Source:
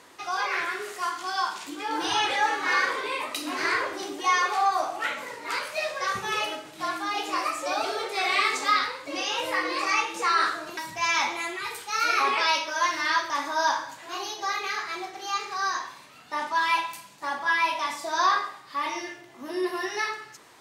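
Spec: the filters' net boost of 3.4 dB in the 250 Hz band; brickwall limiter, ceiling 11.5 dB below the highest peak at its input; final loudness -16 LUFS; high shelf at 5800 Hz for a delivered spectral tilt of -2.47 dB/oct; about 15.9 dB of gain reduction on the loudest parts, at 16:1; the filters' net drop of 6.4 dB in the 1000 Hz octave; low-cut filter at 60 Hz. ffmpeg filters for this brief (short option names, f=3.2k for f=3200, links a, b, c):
-af "highpass=60,equalizer=f=250:t=o:g=6,equalizer=f=1k:t=o:g=-8.5,highshelf=f=5.8k:g=8,acompressor=threshold=-37dB:ratio=16,volume=25dB,alimiter=limit=-7dB:level=0:latency=1"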